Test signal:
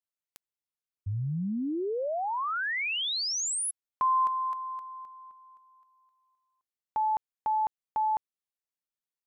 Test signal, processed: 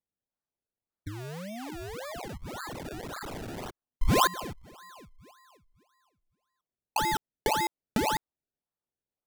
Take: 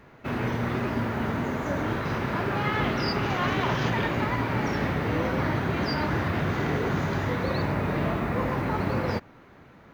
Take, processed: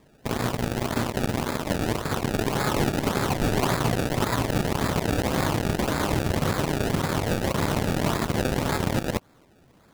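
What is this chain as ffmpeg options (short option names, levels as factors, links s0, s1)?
-filter_complex "[0:a]asplit=2[s0][s1];[s1]acompressor=threshold=0.0141:ratio=6:attack=37:release=290:detection=peak,volume=0.841[s2];[s0][s2]amix=inputs=2:normalize=0,acrusher=samples=29:mix=1:aa=0.000001:lfo=1:lforange=29:lforate=1.8,aeval=exprs='0.224*(cos(1*acos(clip(val(0)/0.224,-1,1)))-cos(1*PI/2))+0.02*(cos(5*acos(clip(val(0)/0.224,-1,1)))-cos(5*PI/2))+0.0562*(cos(7*acos(clip(val(0)/0.224,-1,1)))-cos(7*PI/2))':c=same"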